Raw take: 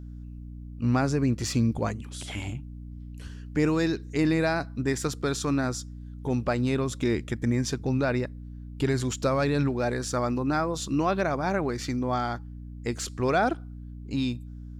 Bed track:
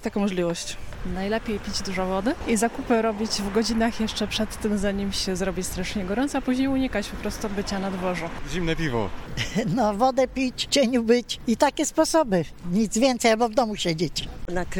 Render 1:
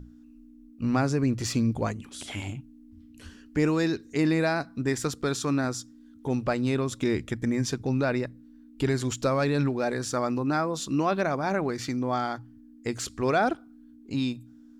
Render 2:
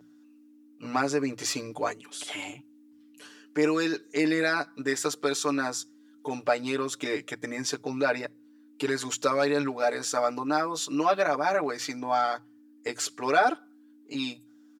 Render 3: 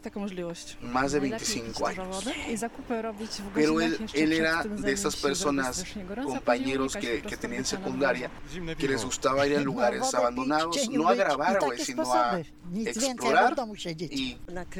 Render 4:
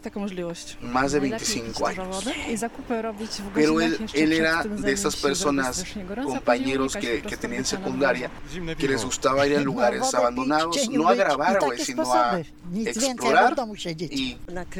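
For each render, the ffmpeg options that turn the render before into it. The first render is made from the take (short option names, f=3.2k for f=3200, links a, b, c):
-af "bandreject=f=60:t=h:w=6,bandreject=f=120:t=h:w=6,bandreject=f=180:t=h:w=6"
-af "highpass=420,aecho=1:1:6.8:1"
-filter_complex "[1:a]volume=-10dB[a];[0:a][a]amix=inputs=2:normalize=0"
-af "volume=4dB"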